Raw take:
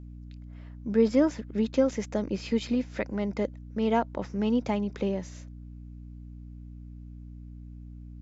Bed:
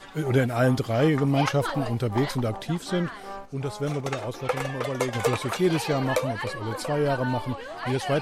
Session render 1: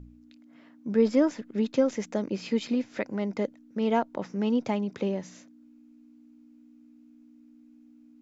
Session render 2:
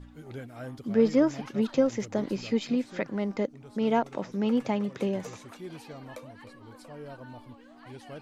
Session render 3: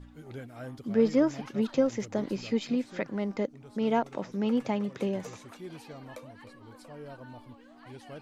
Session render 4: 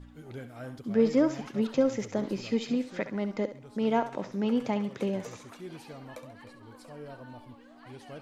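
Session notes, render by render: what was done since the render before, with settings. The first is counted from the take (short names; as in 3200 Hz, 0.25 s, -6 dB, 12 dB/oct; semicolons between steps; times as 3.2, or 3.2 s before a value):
de-hum 60 Hz, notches 3
add bed -19 dB
gain -1.5 dB
thinning echo 68 ms, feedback 34%, level -10.5 dB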